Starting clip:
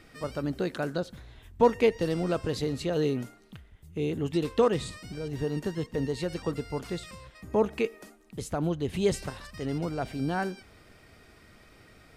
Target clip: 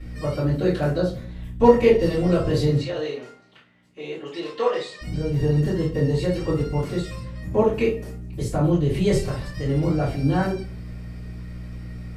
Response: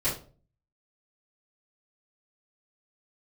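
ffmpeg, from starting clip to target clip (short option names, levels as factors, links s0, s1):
-filter_complex "[0:a]aeval=exprs='val(0)+0.00708*(sin(2*PI*60*n/s)+sin(2*PI*2*60*n/s)/2+sin(2*PI*3*60*n/s)/3+sin(2*PI*4*60*n/s)/4+sin(2*PI*5*60*n/s)/5)':c=same,asettb=1/sr,asplit=3[s0][s1][s2];[s0]atrim=end=2.774[s3];[s1]atrim=start=2.77:end=5.01,asetpts=PTS-STARTPTS,afade=t=in:d=0.004:c=qsin,afade=t=out:st=2.236:d=0.004:c=qsin,highpass=670,lowpass=5400[s4];[s2]atrim=start=5.006[s5];[s3][s4]acrossfade=d=0.004:c1=hsin:c2=qsin[s6];[s6][s5]acrossfade=d=0.004:c1=qsin:c2=hsin[s7];[1:a]atrim=start_sample=2205[s8];[s7][s8]afir=irnorm=-1:irlink=0,volume=0.668"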